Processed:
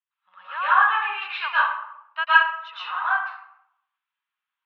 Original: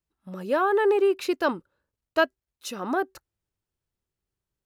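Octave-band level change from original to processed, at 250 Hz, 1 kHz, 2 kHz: below −40 dB, +8.0 dB, +11.5 dB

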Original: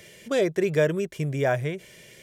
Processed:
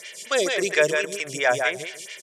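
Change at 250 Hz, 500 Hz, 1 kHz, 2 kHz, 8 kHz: −5.5, +1.0, +5.5, +9.5, +13.5 decibels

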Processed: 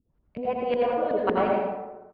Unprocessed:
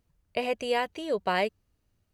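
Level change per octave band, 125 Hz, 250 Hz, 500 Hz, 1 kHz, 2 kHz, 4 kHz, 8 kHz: +5.0 dB, +6.0 dB, +5.0 dB, +4.0 dB, −4.0 dB, −9.0 dB, below −25 dB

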